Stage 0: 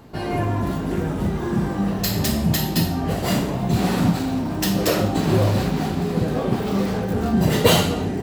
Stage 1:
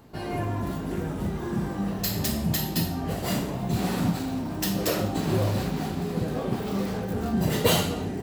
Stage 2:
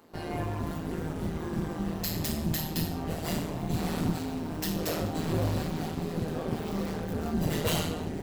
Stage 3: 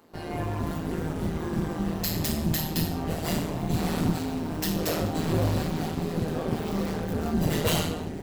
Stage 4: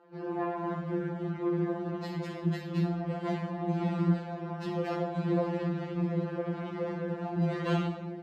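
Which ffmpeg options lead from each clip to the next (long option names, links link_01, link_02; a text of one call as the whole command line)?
ffmpeg -i in.wav -af "highshelf=frequency=8300:gain=5,volume=-6.5dB" out.wav
ffmpeg -i in.wav -filter_complex "[0:a]acrossover=split=180[link_01][link_02];[link_01]acrusher=bits=7:mix=0:aa=0.000001[link_03];[link_02]asoftclip=type=tanh:threshold=-22dB[link_04];[link_03][link_04]amix=inputs=2:normalize=0,tremolo=f=160:d=0.71" out.wav
ffmpeg -i in.wav -af "dynaudnorm=framelen=120:gausssize=7:maxgain=3.5dB" out.wav
ffmpeg -i in.wav -af "highpass=160,lowpass=2100,equalizer=frequency=400:width_type=o:width=0.25:gain=5,afftfilt=real='re*2.83*eq(mod(b,8),0)':imag='im*2.83*eq(mod(b,8),0)':win_size=2048:overlap=0.75,volume=-1dB" out.wav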